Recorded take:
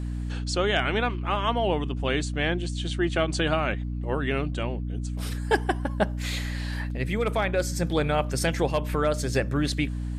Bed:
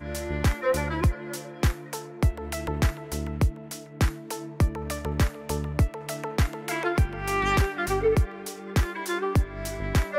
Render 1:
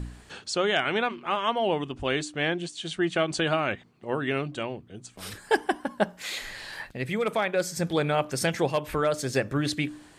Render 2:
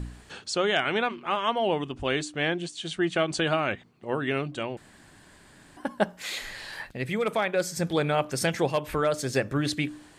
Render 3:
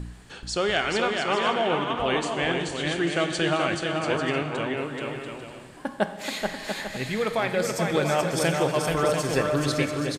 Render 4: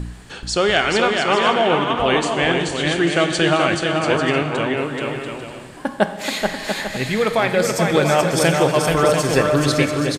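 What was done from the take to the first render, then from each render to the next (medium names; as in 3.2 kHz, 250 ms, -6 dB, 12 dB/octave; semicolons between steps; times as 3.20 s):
de-hum 60 Hz, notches 5
4.77–5.77 s: room tone
on a send: bouncing-ball echo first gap 430 ms, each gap 0.6×, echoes 5; on the sum: plate-style reverb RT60 2 s, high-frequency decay 0.95×, DRR 8.5 dB
trim +7.5 dB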